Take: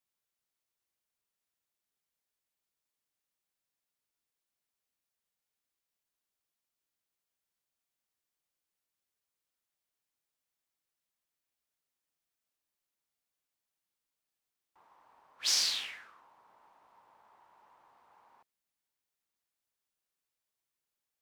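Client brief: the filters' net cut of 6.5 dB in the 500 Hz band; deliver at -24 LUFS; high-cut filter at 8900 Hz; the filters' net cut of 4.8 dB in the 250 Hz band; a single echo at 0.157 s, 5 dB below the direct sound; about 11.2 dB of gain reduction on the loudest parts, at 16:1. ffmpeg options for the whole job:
-af "lowpass=8.9k,equalizer=f=250:t=o:g=-3.5,equalizer=f=500:t=o:g=-8,acompressor=threshold=-36dB:ratio=16,aecho=1:1:157:0.562,volume=15.5dB"

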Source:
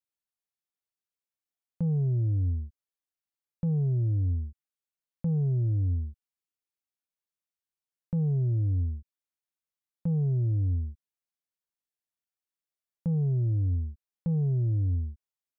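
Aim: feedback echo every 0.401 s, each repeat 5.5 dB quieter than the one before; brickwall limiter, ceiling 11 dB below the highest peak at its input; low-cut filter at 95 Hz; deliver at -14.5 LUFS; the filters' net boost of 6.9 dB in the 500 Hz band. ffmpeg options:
-af "highpass=95,equalizer=f=500:t=o:g=8.5,alimiter=level_in=6.5dB:limit=-24dB:level=0:latency=1,volume=-6.5dB,aecho=1:1:401|802|1203|1604|2005|2406|2807:0.531|0.281|0.149|0.079|0.0419|0.0222|0.0118,volume=24dB"

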